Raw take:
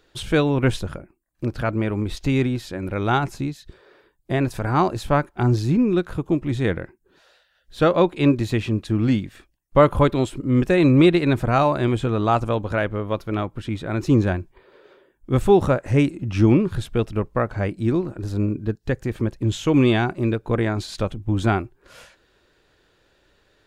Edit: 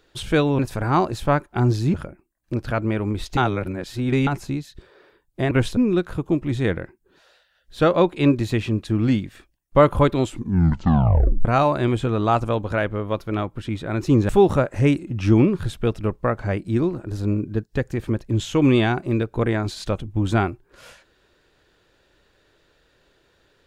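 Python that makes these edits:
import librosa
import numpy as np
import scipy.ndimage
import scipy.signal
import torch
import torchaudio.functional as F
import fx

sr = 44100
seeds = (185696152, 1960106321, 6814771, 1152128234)

y = fx.edit(x, sr, fx.swap(start_s=0.59, length_s=0.26, other_s=4.42, other_length_s=1.35),
    fx.reverse_span(start_s=2.28, length_s=0.9),
    fx.tape_stop(start_s=10.23, length_s=1.22),
    fx.cut(start_s=14.29, length_s=1.12), tone=tone)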